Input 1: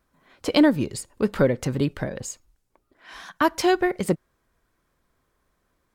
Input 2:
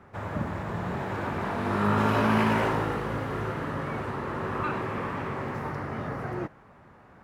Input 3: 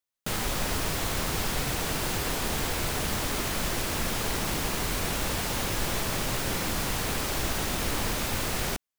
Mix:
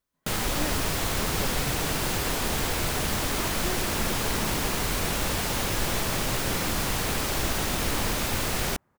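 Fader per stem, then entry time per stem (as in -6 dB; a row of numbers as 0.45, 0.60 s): -18.0, -17.0, +2.0 dB; 0.00, 2.00, 0.00 s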